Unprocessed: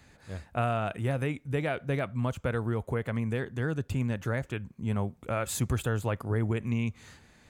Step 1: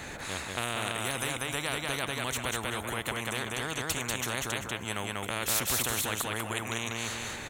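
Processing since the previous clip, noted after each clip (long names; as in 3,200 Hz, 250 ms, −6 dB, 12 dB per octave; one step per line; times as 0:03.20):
notch filter 4,800 Hz, Q 5.8
on a send: repeating echo 192 ms, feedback 18%, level −4 dB
on the sum: every bin compressed towards the loudest bin 4 to 1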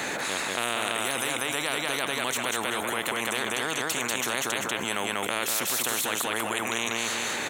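high-pass filter 240 Hz 12 dB per octave
envelope flattener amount 70%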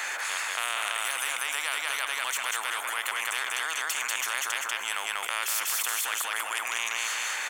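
one-sided soft clipper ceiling −22 dBFS
Chebyshev high-pass filter 1,200 Hz, order 2
notch filter 3,900 Hz, Q 7.1
level +1.5 dB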